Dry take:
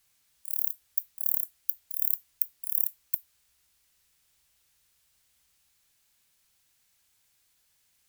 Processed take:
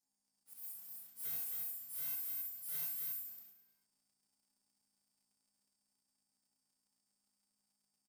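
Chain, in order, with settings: frequency quantiser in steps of 2 st; elliptic band-stop 1200–5100 Hz; auto swell 0.297 s; vowel filter e; ring modulator 290 Hz; echo 0.266 s -3.5 dB; Schroeder reverb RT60 0.64 s, combs from 31 ms, DRR 1.5 dB; sample leveller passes 3; lo-fi delay 0.108 s, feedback 55%, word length 13-bit, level -14 dB; gain +11 dB

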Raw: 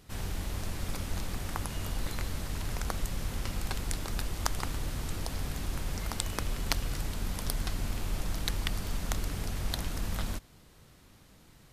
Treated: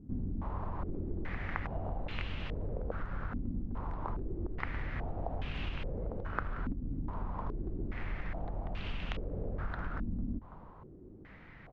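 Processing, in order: compressor 6:1, threshold -37 dBFS, peak gain reduction 14 dB; air absorption 120 m; on a send: echo 0.331 s -16.5 dB; on the sum: stepped low-pass 2.4 Hz 260–2800 Hz; gain +3.5 dB

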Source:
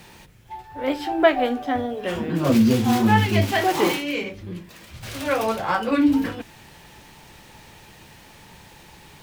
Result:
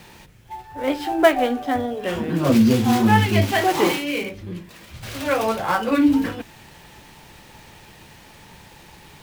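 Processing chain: switching dead time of 0.055 ms; gain +1.5 dB

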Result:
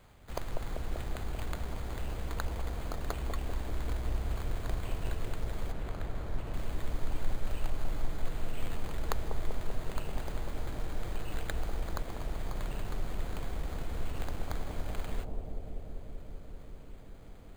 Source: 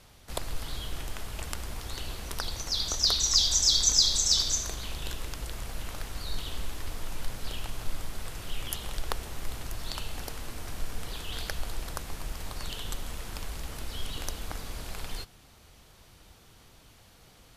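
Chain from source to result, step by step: careless resampling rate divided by 8×, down filtered, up hold; 5.72–6.54 high shelf 3500 Hz -8.5 dB; analogue delay 0.194 s, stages 1024, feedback 85%, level -3.5 dB; gain -1.5 dB

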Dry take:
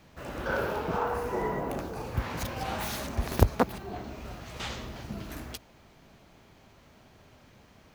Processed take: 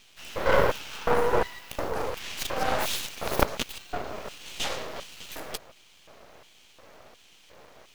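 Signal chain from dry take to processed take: wavefolder -12 dBFS; LFO high-pass square 1.4 Hz 500–3000 Hz; half-wave rectifier; gain +8.5 dB

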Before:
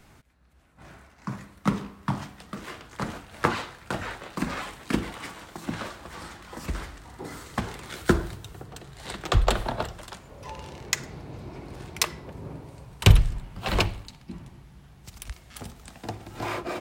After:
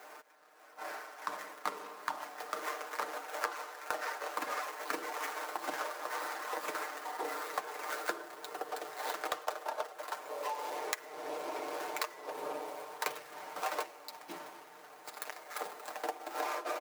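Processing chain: median filter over 15 samples; HPF 470 Hz 24 dB/oct; high shelf 9300 Hz +9.5 dB; comb 6.6 ms, depth 69%; compressor 8:1, threshold -43 dBFS, peak gain reduction 24 dB; gain +9 dB

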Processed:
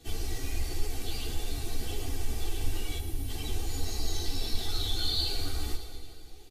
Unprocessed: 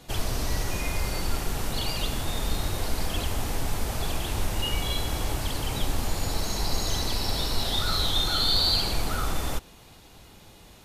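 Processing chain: on a send at -9.5 dB: reverb RT60 3.8 s, pre-delay 83 ms; on the sum: spectral gain 4.97–5.48, 340–8600 Hz -8 dB; bell 220 Hz +6.5 dB 0.48 oct; plain phase-vocoder stretch 0.6×; in parallel at -10 dB: soft clip -31 dBFS, distortion -9 dB; on the sum: bell 1100 Hz -10 dB 1.2 oct; comb 2.6 ms, depth 99%; split-band echo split 770 Hz, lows 0.291 s, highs 0.113 s, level -12.5 dB; ensemble effect; gain -4.5 dB

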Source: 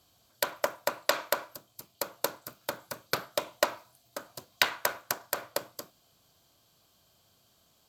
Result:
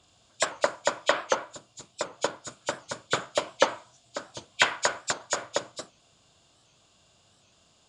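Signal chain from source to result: nonlinear frequency compression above 2200 Hz 1.5:1; 0.93–2.45 dynamic EQ 6500 Hz, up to -6 dB, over -47 dBFS, Q 0.7; record warp 78 rpm, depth 160 cents; gain +4.5 dB

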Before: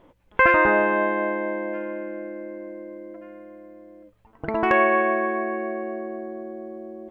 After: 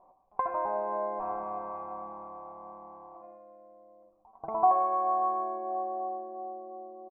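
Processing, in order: 1.19–3.22 minimum comb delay 9 ms; high shelf 3000 Hz -11.5 dB; comb 5.2 ms, depth 47%; compressor 6:1, threshold -21 dBFS, peak gain reduction 8 dB; vocal tract filter a; reverb RT60 0.55 s, pre-delay 78 ms, DRR 9 dB; gain +8.5 dB

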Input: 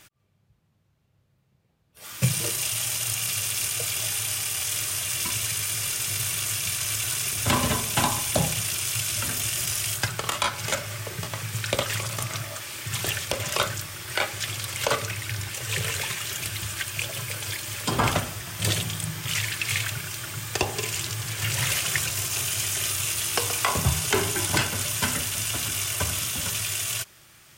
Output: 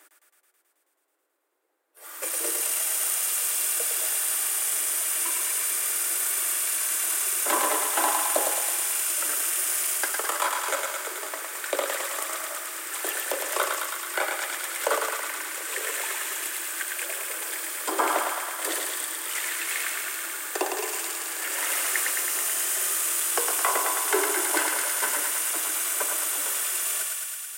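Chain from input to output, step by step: steep high-pass 300 Hz 72 dB/oct; band shelf 3900 Hz -9 dB; thinning echo 0.108 s, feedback 81%, high-pass 660 Hz, level -3 dB

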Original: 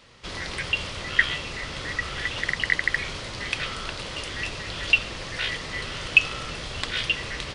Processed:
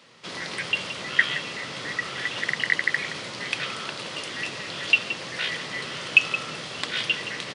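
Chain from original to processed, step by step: HPF 140 Hz 24 dB/oct; on a send: echo 0.171 s -12 dB

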